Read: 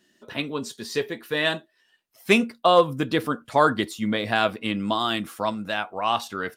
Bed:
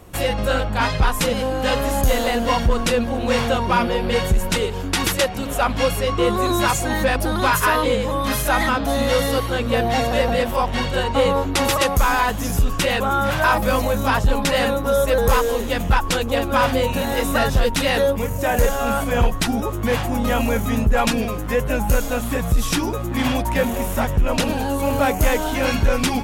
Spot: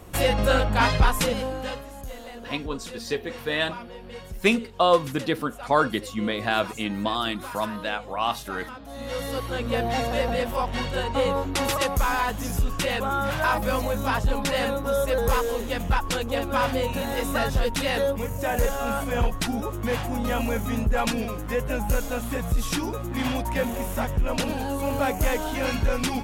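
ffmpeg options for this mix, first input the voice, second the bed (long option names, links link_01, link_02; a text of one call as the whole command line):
ffmpeg -i stem1.wav -i stem2.wav -filter_complex "[0:a]adelay=2150,volume=-2dB[link_01];[1:a]volume=13.5dB,afade=type=out:start_time=0.93:duration=0.92:silence=0.105925,afade=type=in:start_time=8.89:duration=0.76:silence=0.199526[link_02];[link_01][link_02]amix=inputs=2:normalize=0" out.wav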